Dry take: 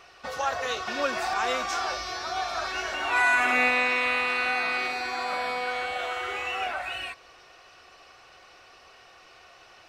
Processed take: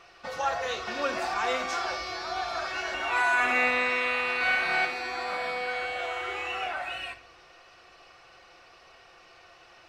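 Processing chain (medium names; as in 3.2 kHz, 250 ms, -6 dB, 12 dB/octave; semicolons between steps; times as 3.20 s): treble shelf 8.4 kHz -6.5 dB; 4.38–4.85 s: flutter echo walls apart 4.6 m, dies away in 0.97 s; on a send at -7 dB: reverberation RT60 0.60 s, pre-delay 6 ms; on the sum: trim -2 dB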